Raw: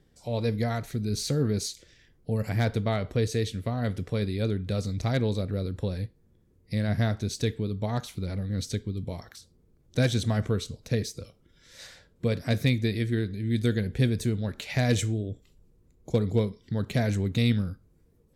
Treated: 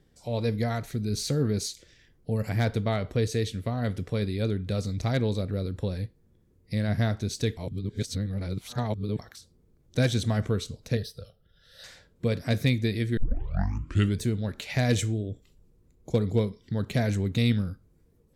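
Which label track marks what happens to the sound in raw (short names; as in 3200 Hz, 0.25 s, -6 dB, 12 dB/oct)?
7.570000	9.190000	reverse
10.970000	11.840000	fixed phaser centre 1500 Hz, stages 8
13.170000	13.170000	tape start 1.05 s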